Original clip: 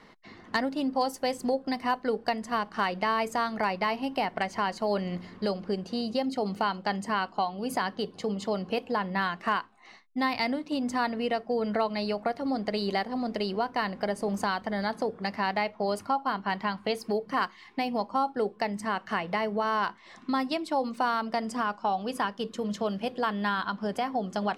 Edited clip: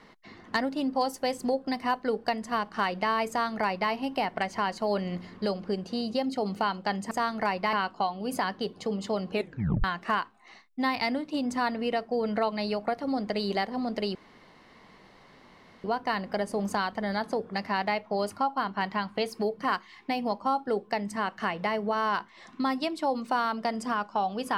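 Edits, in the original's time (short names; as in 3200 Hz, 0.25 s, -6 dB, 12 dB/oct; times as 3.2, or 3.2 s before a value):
3.29–3.91 copy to 7.11
8.71 tape stop 0.51 s
13.53 insert room tone 1.69 s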